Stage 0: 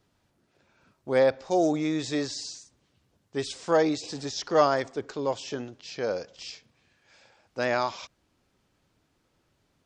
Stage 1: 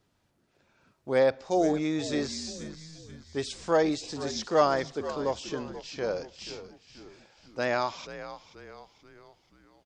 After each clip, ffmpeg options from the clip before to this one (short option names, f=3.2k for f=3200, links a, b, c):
-filter_complex "[0:a]asplit=6[a][b][c][d][e][f];[b]adelay=482,afreqshift=-76,volume=-13dB[g];[c]adelay=964,afreqshift=-152,volume=-19.6dB[h];[d]adelay=1446,afreqshift=-228,volume=-26.1dB[i];[e]adelay=1928,afreqshift=-304,volume=-32.7dB[j];[f]adelay=2410,afreqshift=-380,volume=-39.2dB[k];[a][g][h][i][j][k]amix=inputs=6:normalize=0,volume=-1.5dB"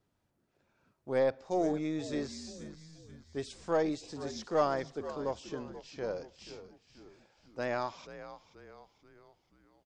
-af "equalizer=f=4.2k:t=o:w=2.7:g=-5,aeval=exprs='0.316*(cos(1*acos(clip(val(0)/0.316,-1,1)))-cos(1*PI/2))+0.002*(cos(7*acos(clip(val(0)/0.316,-1,1)))-cos(7*PI/2))+0.00447*(cos(8*acos(clip(val(0)/0.316,-1,1)))-cos(8*PI/2))':c=same,volume=-5dB"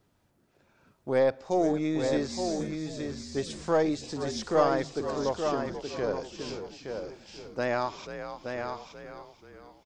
-filter_complex "[0:a]asplit=2[a][b];[b]acompressor=threshold=-40dB:ratio=6,volume=-1dB[c];[a][c]amix=inputs=2:normalize=0,aecho=1:1:872:0.501,volume=3dB"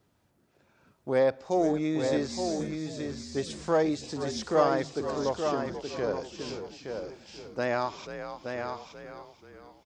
-af "highpass=45"